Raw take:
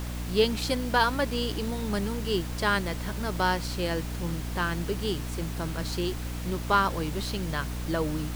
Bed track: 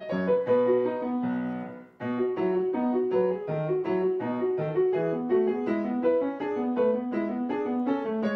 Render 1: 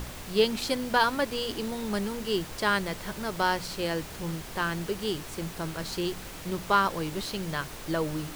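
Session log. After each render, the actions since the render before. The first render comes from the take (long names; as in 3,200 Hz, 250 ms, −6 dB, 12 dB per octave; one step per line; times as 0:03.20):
hum removal 60 Hz, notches 5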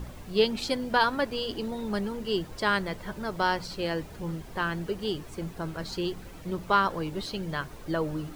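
broadband denoise 11 dB, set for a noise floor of −41 dBFS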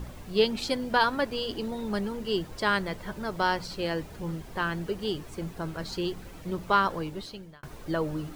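0:06.94–0:07.63: fade out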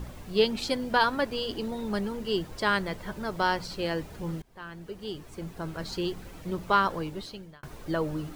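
0:04.42–0:05.88: fade in, from −21.5 dB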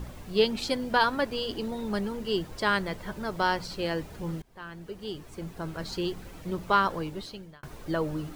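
no processing that can be heard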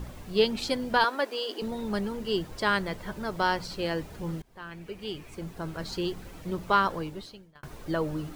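0:01.04–0:01.62: high-pass filter 320 Hz 24 dB per octave
0:04.71–0:05.35: parametric band 2,400 Hz +11.5 dB 0.39 octaves
0:06.79–0:07.55: fade out equal-power, to −14 dB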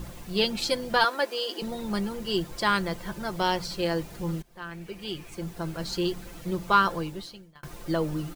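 high-shelf EQ 3,800 Hz +5.5 dB
comb filter 5.8 ms, depth 48%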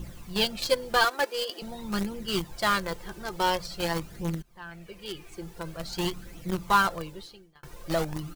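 in parallel at −5.5 dB: bit reduction 4 bits
on the sum: flanger 0.47 Hz, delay 0.3 ms, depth 2.4 ms, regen +36%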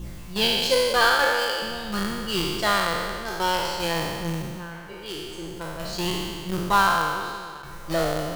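peak hold with a decay on every bin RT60 1.85 s
tape delay 378 ms, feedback 84%, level −24 dB, low-pass 4,500 Hz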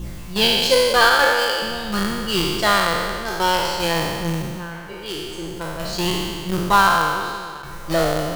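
level +5 dB
brickwall limiter −3 dBFS, peak gain reduction 1.5 dB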